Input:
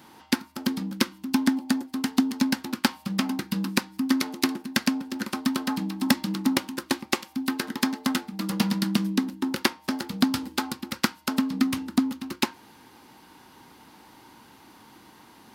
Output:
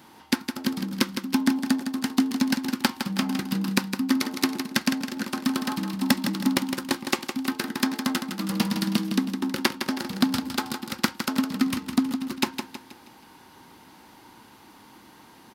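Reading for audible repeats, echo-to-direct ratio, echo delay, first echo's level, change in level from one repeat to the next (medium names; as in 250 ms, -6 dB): 4, -7.0 dB, 160 ms, -8.0 dB, -7.5 dB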